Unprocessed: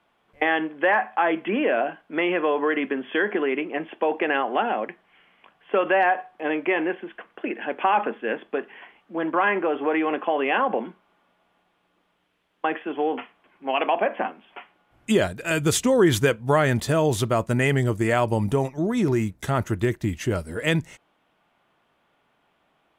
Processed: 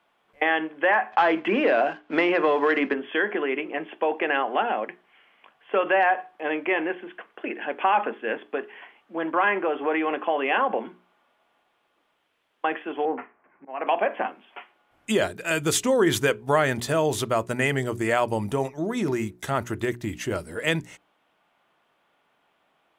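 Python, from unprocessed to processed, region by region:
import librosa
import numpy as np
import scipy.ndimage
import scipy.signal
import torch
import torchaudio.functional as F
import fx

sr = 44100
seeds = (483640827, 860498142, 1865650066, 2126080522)

y = fx.chain(x, sr, fx.leveller(passes=1),
    fx.air_absorb(metres=110.0),
    fx.band_squash(depth_pct=70), at=(1.12, 2.94))
y = fx.chain(y, sr, fx.steep_lowpass(hz=2100.0, slope=36),
    fx.auto_swell(attack_ms=269.0),
    fx.peak_eq(hz=130.0, db=4.5, octaves=1.1), at=(13.05, 13.87))
y = fx.low_shelf(y, sr, hz=200.0, db=-9.0)
y = fx.hum_notches(y, sr, base_hz=60, count=7)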